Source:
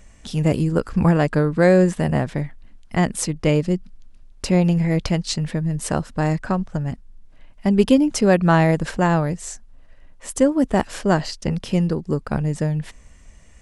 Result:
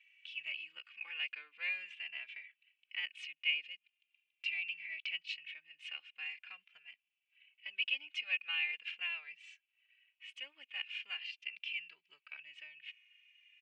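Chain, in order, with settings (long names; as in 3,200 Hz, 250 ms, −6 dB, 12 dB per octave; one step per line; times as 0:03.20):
one-sided soft clipper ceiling −6.5 dBFS
flat-topped band-pass 2,600 Hz, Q 4.1
barber-pole flanger 2.6 ms −0.42 Hz
level +5.5 dB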